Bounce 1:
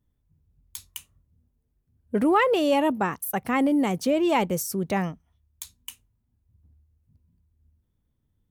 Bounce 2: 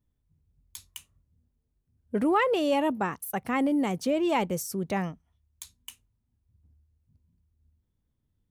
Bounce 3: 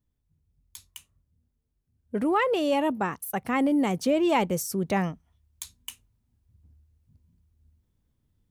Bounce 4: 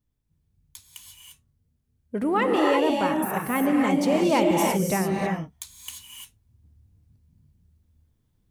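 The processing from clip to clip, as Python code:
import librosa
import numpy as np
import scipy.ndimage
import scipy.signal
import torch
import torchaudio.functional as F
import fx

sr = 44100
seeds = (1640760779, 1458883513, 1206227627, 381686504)

y1 = fx.peak_eq(x, sr, hz=16000.0, db=-10.5, octaves=0.32)
y1 = y1 * 10.0 ** (-3.5 / 20.0)
y2 = fx.rider(y1, sr, range_db=10, speed_s=2.0)
y2 = y2 * 10.0 ** (1.5 / 20.0)
y3 = fx.rev_gated(y2, sr, seeds[0], gate_ms=370, shape='rising', drr_db=-0.5)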